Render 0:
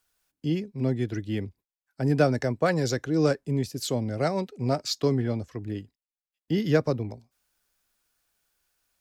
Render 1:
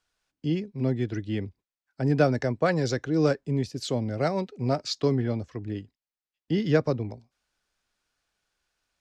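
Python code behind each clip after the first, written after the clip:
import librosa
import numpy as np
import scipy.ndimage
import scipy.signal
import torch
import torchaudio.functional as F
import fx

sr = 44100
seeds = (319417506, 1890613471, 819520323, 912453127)

y = scipy.signal.sosfilt(scipy.signal.butter(2, 5900.0, 'lowpass', fs=sr, output='sos'), x)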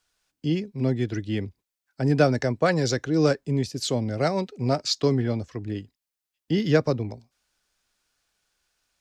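y = fx.high_shelf(x, sr, hz=4300.0, db=7.0)
y = y * 10.0 ** (2.0 / 20.0)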